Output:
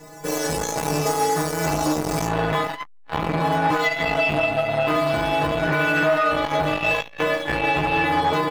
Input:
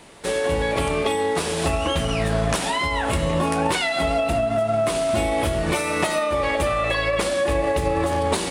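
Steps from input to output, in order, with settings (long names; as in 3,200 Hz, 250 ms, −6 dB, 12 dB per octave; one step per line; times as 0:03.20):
running median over 15 samples
high shelf with overshoot 4,600 Hz +7.5 dB, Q 1.5, from 0:02.26 −7.5 dB
stiff-string resonator 150 Hz, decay 0.76 s, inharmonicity 0.008
slap from a distant wall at 59 metres, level −22 dB
boost into a limiter +32.5 dB
saturating transformer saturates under 560 Hz
level −8.5 dB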